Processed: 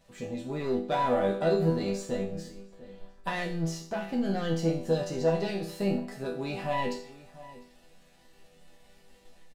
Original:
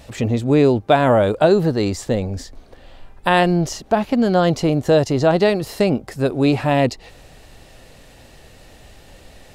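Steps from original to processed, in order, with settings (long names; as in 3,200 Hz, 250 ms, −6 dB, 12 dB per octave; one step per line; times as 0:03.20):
pitch vibrato 3.7 Hz 5.4 cents
leveller curve on the samples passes 1
resonators tuned to a chord E3 minor, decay 0.49 s
automatic gain control gain up to 3.5 dB
slap from a distant wall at 120 metres, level −17 dB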